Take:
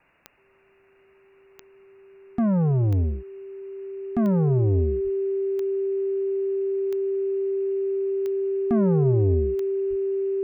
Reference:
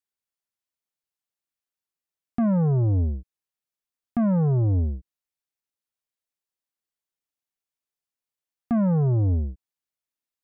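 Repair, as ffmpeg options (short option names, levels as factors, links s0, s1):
-filter_complex "[0:a]adeclick=t=4,bandreject=f=390:w=30,asplit=3[s0][s1][s2];[s0]afade=t=out:st=5.03:d=0.02[s3];[s1]highpass=f=140:w=0.5412,highpass=f=140:w=1.3066,afade=t=in:st=5.03:d=0.02,afade=t=out:st=5.15:d=0.02[s4];[s2]afade=t=in:st=5.15:d=0.02[s5];[s3][s4][s5]amix=inputs=3:normalize=0,asplit=3[s6][s7][s8];[s6]afade=t=out:st=9.39:d=0.02[s9];[s7]highpass=f=140:w=0.5412,highpass=f=140:w=1.3066,afade=t=in:st=9.39:d=0.02,afade=t=out:st=9.51:d=0.02[s10];[s8]afade=t=in:st=9.51:d=0.02[s11];[s9][s10][s11]amix=inputs=3:normalize=0,asplit=3[s12][s13][s14];[s12]afade=t=out:st=9.89:d=0.02[s15];[s13]highpass=f=140:w=0.5412,highpass=f=140:w=1.3066,afade=t=in:st=9.89:d=0.02,afade=t=out:st=10.01:d=0.02[s16];[s14]afade=t=in:st=10.01:d=0.02[s17];[s15][s16][s17]amix=inputs=3:normalize=0,agate=range=0.0891:threshold=0.00316"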